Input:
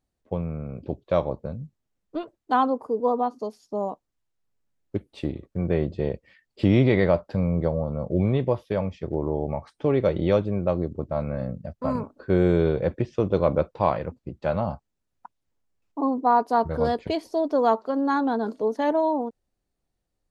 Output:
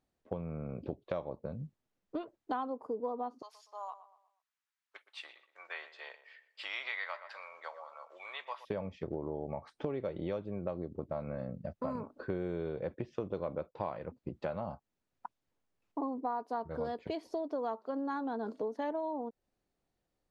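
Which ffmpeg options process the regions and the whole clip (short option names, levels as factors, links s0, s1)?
-filter_complex "[0:a]asettb=1/sr,asplit=3[s0][s1][s2];[s0]atrim=end=3.424[s3];[s1]atrim=start=3.42:end=8.65,asetpts=PTS-STARTPTS,afade=t=in:d=0.004:c=qsin,afade=t=out:st=5.226:d=0.004:c=qsin,highpass=f=1100:w=0.5412,highpass=f=1100:w=1.3066,asplit=2[s4][s5];[s5]adelay=120,lowpass=f=2600:p=1,volume=0.2,asplit=2[s6][s7];[s7]adelay=120,lowpass=f=2600:p=1,volume=0.41,asplit=2[s8][s9];[s9]adelay=120,lowpass=f=2600:p=1,volume=0.41,asplit=2[s10][s11];[s11]adelay=120,lowpass=f=2600:p=1,volume=0.41[s12];[s4][s6][s8][s10][s12]amix=inputs=5:normalize=0,atrim=end_sample=230643[s13];[s2]atrim=start=8.646[s14];[s3][s13]acrossfade=d=0.004:c1=hsin:c2=qsin[s15];[s15][s14]acrossfade=d=0.004:c1=qsin:c2=hsin,lowpass=f=3800:p=1,lowshelf=f=110:g=-10.5,acompressor=threshold=0.0158:ratio=5,volume=1.12"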